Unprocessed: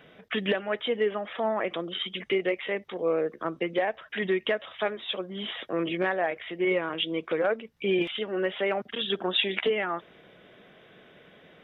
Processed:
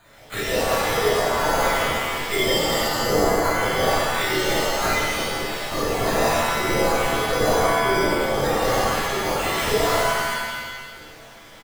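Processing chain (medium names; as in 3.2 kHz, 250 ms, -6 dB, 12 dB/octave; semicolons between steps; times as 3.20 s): coarse spectral quantiser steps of 30 dB; low-pass 2.2 kHz 24 dB/octave; low-pass that closes with the level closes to 1.2 kHz, closed at -23 dBFS; high-pass 300 Hz; echo from a far wall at 220 m, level -28 dB; LPC vocoder at 8 kHz whisper; careless resampling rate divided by 8×, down none, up hold; pitch-shifted reverb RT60 1.4 s, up +7 st, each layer -2 dB, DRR -9 dB; trim -1.5 dB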